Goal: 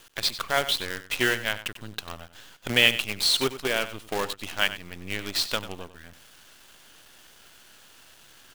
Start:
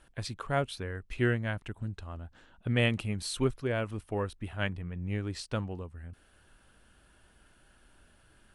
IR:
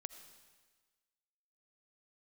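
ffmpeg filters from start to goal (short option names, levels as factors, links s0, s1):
-filter_complex "[0:a]highpass=f=510:p=1,equalizer=f=3600:w=1:g=12.5,asplit=2[s0][s1];[s1]acompressor=threshold=0.0126:ratio=6,volume=1[s2];[s0][s2]amix=inputs=2:normalize=0,acrusher=bits=6:dc=4:mix=0:aa=0.000001,asplit=2[s3][s4];[s4]aecho=0:1:94:0.211[s5];[s3][s5]amix=inputs=2:normalize=0,volume=1.5"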